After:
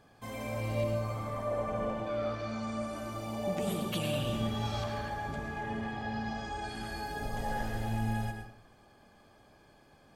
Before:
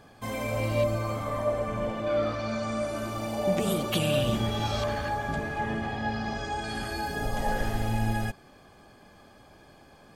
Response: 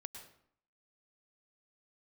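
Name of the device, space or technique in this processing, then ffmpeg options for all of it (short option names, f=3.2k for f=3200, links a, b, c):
bathroom: -filter_complex "[0:a]asettb=1/sr,asplit=3[a][b][c];[a]atrim=end=1.514[d];[b]atrim=start=1.51:end=1.94,asetpts=PTS-STARTPTS,afade=t=in:d=0.004:c=qsin,afade=t=out:st=0.426:d=0.004:c=qsin,equalizer=f=640:t=o:w=2:g=5.5[e];[c]atrim=start=1.936[f];[d][e]acrossfade=d=0.004:c1=hsin:c2=qsin[g];[g][f]acrossfade=d=0.004:c1=qsin:c2=hsin[h];[1:a]atrim=start_sample=2205[i];[h][i]afir=irnorm=-1:irlink=0,volume=-2.5dB"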